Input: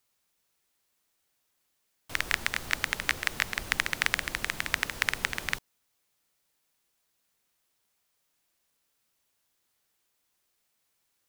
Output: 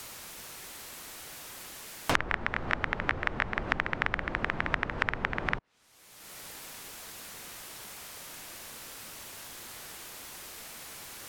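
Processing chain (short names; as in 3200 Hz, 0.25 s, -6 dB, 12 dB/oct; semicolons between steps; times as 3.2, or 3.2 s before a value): treble ducked by the level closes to 1400 Hz, closed at -32.5 dBFS; three-band squash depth 100%; gain +5 dB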